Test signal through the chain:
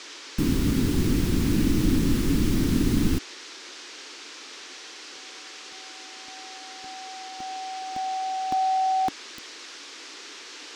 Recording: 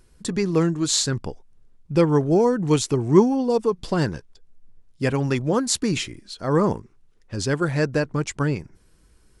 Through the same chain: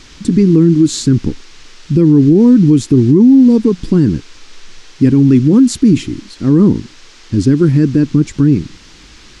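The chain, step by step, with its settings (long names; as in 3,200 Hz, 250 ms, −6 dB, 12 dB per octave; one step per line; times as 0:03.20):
noise in a band 490–6,100 Hz −42 dBFS
low shelf with overshoot 430 Hz +13.5 dB, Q 3
brickwall limiter −1.5 dBFS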